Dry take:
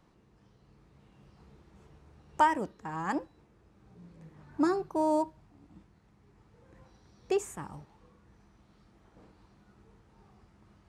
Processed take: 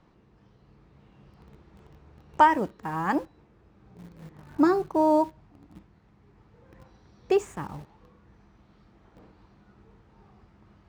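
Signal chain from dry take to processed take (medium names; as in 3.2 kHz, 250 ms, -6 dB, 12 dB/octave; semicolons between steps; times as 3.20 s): Bessel low-pass 4.1 kHz, order 2; in parallel at -10.5 dB: word length cut 8-bit, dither none; on the sum: trim +4 dB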